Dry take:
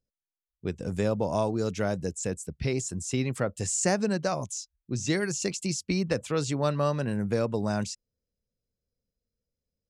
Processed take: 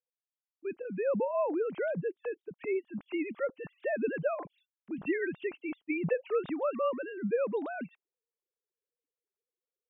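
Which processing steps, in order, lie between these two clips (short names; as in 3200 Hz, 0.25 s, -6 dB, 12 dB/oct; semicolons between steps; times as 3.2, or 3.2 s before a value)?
sine-wave speech; gain -4.5 dB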